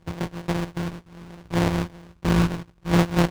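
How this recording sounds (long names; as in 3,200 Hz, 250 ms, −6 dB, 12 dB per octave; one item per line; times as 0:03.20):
a buzz of ramps at a fixed pitch in blocks of 256 samples
phaser sweep stages 8, 0.71 Hz, lowest notch 630–1,600 Hz
aliases and images of a low sample rate 1,300 Hz, jitter 20%
IMA ADPCM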